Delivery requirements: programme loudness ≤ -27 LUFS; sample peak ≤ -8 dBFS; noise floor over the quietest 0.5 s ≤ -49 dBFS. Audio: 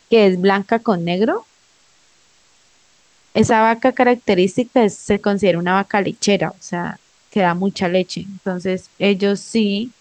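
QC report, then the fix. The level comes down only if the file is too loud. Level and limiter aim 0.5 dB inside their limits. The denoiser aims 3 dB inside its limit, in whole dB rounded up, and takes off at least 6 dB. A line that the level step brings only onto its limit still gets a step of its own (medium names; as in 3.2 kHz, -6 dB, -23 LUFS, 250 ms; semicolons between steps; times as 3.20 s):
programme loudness -17.5 LUFS: fail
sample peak -2.5 dBFS: fail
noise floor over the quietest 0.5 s -55 dBFS: pass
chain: trim -10 dB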